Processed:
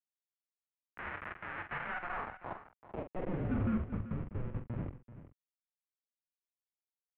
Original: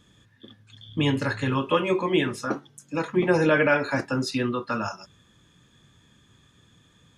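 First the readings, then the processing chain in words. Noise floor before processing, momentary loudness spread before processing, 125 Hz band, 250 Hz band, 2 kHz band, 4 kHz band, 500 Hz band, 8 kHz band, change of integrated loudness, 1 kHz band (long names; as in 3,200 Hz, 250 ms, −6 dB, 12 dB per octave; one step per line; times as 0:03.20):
−60 dBFS, 12 LU, −9.5 dB, −13.5 dB, −15.5 dB, below −25 dB, −21.0 dB, below −35 dB, −14.5 dB, −13.5 dB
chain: parametric band 1,500 Hz −2.5 dB 0.22 octaves
mains-hum notches 60/120/180/240/300/360/420/480/540 Hz
harmonic and percussive parts rebalanced percussive −8 dB
in parallel at −1.5 dB: downward compressor 20 to 1, threshold −36 dBFS, peak gain reduction 20.5 dB
on the sum: comparator with hysteresis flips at −24 dBFS
band-pass filter sweep 2,000 Hz → 470 Hz, 0:01.86–0:03.82
soft clipping −31.5 dBFS, distortion −16 dB
double-tracking delay 45 ms −8.5 dB
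on a send: single-tap delay 385 ms −14 dB
on the sum: single-sideband voice off tune −360 Hz 210–3,100 Hz
level +3.5 dB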